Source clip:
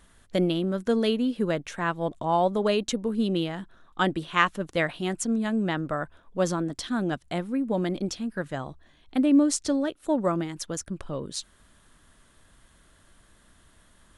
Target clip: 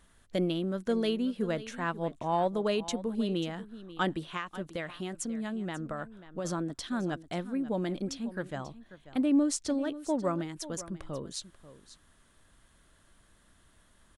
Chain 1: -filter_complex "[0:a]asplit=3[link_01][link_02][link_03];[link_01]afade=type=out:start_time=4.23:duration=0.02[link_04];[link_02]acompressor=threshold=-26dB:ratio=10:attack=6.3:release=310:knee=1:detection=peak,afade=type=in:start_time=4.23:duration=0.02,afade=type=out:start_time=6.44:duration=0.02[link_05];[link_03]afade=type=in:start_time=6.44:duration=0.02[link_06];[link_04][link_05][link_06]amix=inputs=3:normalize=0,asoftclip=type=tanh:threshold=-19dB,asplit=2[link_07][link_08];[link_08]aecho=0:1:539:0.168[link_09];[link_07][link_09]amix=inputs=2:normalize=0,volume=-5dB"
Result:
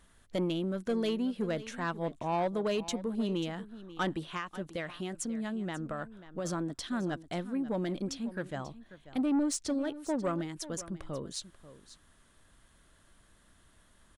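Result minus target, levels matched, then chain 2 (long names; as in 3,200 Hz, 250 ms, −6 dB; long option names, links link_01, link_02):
soft clipping: distortion +17 dB
-filter_complex "[0:a]asplit=3[link_01][link_02][link_03];[link_01]afade=type=out:start_time=4.23:duration=0.02[link_04];[link_02]acompressor=threshold=-26dB:ratio=10:attack=6.3:release=310:knee=1:detection=peak,afade=type=in:start_time=4.23:duration=0.02,afade=type=out:start_time=6.44:duration=0.02[link_05];[link_03]afade=type=in:start_time=6.44:duration=0.02[link_06];[link_04][link_05][link_06]amix=inputs=3:normalize=0,asoftclip=type=tanh:threshold=-8dB,asplit=2[link_07][link_08];[link_08]aecho=0:1:539:0.168[link_09];[link_07][link_09]amix=inputs=2:normalize=0,volume=-5dB"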